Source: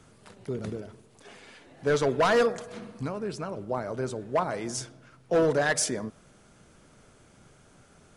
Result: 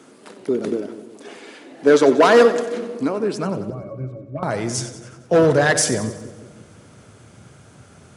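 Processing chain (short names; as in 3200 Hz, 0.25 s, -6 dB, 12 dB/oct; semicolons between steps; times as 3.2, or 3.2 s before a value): high-pass sweep 290 Hz -> 96 Hz, 3.24–3.83; 3.7–4.43 octave resonator C#, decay 0.12 s; split-band echo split 620 Hz, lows 0.174 s, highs 92 ms, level -12.5 dB; gain +8 dB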